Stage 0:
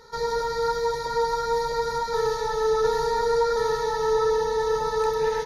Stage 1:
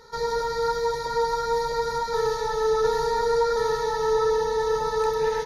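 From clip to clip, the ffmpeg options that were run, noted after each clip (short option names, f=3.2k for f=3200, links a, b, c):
-af anull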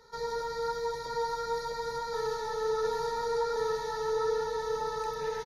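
-filter_complex "[0:a]acrossover=split=120[a][b];[a]asoftclip=type=tanh:threshold=-40dB[c];[b]aecho=1:1:911:0.422[d];[c][d]amix=inputs=2:normalize=0,volume=-8dB"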